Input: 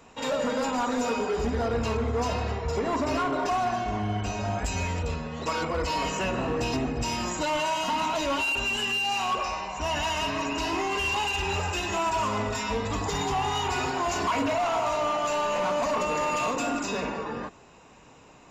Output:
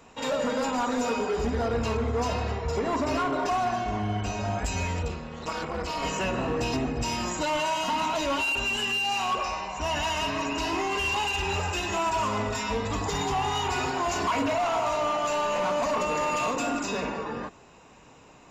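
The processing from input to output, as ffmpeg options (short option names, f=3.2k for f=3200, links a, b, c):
-filter_complex "[0:a]asettb=1/sr,asplit=3[a][b][c];[a]atrim=end=5.084[d];[b]atrim=start=5.08:end=6.03,asetpts=PTS-STARTPTS,afade=t=in:d=0.004:c=qsin,afade=t=out:st=0.946:d=0.004:c=qsin,tremolo=f=280:d=0.824[e];[c]atrim=start=6.026[f];[d][e]acrossfade=d=0.004:c1=hsin:c2=qsin[g];[g][f]acrossfade=d=0.004:c1=qsin:c2=hsin"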